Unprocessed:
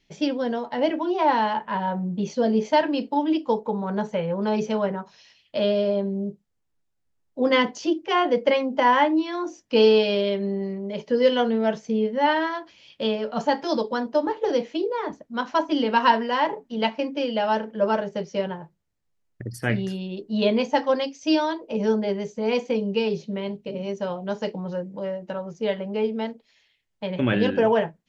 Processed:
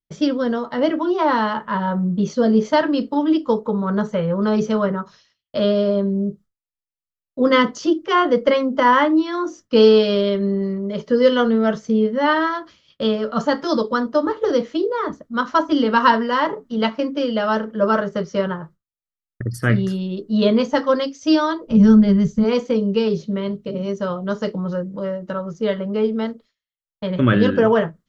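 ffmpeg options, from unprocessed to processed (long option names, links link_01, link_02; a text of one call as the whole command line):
ffmpeg -i in.wav -filter_complex "[0:a]asettb=1/sr,asplit=3[link_01][link_02][link_03];[link_01]atrim=end=17.954[link_04];[link_02]atrim=start=17.95:end=19.51,asetpts=PTS-STARTPTS,afade=type=in:duration=0.004:curve=qsin,afade=type=out:start_time=1.556:duration=0.004:curve=qsin,equalizer=frequency=1300:width_type=o:width=1.5:gain=4.5[link_05];[link_03]atrim=start=19.506[link_06];[link_04][link_05]acrossfade=duration=0.004:curve1=hsin:curve2=qsin[link_07];[link_07][link_06]acrossfade=duration=0.004:curve1=qsin:curve2=hsin,asplit=3[link_08][link_09][link_10];[link_08]afade=type=out:start_time=21.66:duration=0.02[link_11];[link_09]asubboost=boost=11:cutoff=140,afade=type=in:start_time=21.66:duration=0.02,afade=type=out:start_time=22.43:duration=0.02[link_12];[link_10]afade=type=in:start_time=22.43:duration=0.02[link_13];[link_11][link_12][link_13]amix=inputs=3:normalize=0,equalizer=frequency=800:width_type=o:width=0.33:gain=-10,equalizer=frequency=1250:width_type=o:width=0.33:gain=11,equalizer=frequency=2500:width_type=o:width=0.33:gain=-8,agate=range=-33dB:threshold=-45dB:ratio=3:detection=peak,lowshelf=frequency=150:gain=8.5,volume=4dB" out.wav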